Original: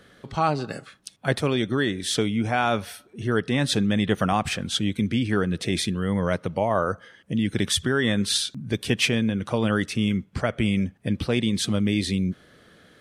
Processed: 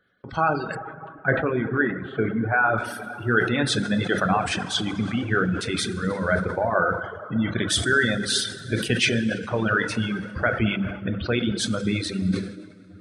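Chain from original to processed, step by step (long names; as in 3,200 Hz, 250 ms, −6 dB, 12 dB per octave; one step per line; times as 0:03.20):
parametric band 1,500 Hz +11 dB 0.24 octaves
mains-hum notches 50/100/150/200/250/300 Hz
gate on every frequency bin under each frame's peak −25 dB strong
noise gate −45 dBFS, range −17 dB
dense smooth reverb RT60 3.5 s, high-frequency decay 0.6×, DRR 2 dB
reverb reduction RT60 1.8 s
0:00.75–0:02.78: inverse Chebyshev low-pass filter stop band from 5,100 Hz, stop band 50 dB
level that may fall only so fast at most 84 dB per second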